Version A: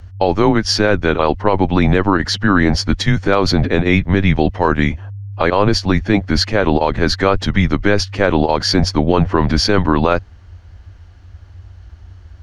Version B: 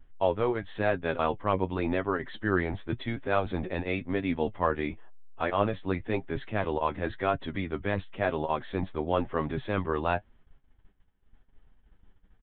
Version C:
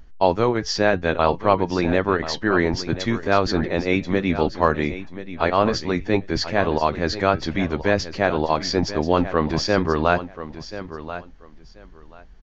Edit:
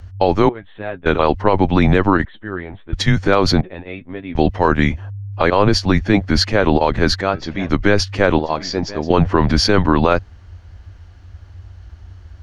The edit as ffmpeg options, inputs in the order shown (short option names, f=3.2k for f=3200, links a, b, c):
-filter_complex "[1:a]asplit=3[a][b][c];[2:a]asplit=2[d][e];[0:a]asplit=6[f][g][h][i][j][k];[f]atrim=end=0.492[l];[a]atrim=start=0.488:end=1.062[m];[g]atrim=start=1.058:end=2.252[n];[b]atrim=start=2.248:end=2.932[o];[h]atrim=start=2.928:end=3.612[p];[c]atrim=start=3.608:end=4.352[q];[i]atrim=start=4.348:end=7.212[r];[d]atrim=start=7.208:end=7.692[s];[j]atrim=start=7.688:end=8.392[t];[e]atrim=start=8.388:end=9.102[u];[k]atrim=start=9.098[v];[l][m]acrossfade=d=0.004:c1=hsin:c2=hsin[w];[w][n]acrossfade=d=0.004:c1=hsin:c2=hsin[x];[x][o]acrossfade=d=0.004:c1=hsin:c2=hsin[y];[y][p]acrossfade=d=0.004:c1=hsin:c2=hsin[z];[z][q]acrossfade=d=0.004:c1=hsin:c2=hsin[aa];[aa][r]acrossfade=d=0.004:c1=hsin:c2=hsin[ab];[ab][s]acrossfade=d=0.004:c1=hsin:c2=hsin[ac];[ac][t]acrossfade=d=0.004:c1=hsin:c2=hsin[ad];[ad][u]acrossfade=d=0.004:c1=hsin:c2=hsin[ae];[ae][v]acrossfade=d=0.004:c1=hsin:c2=hsin"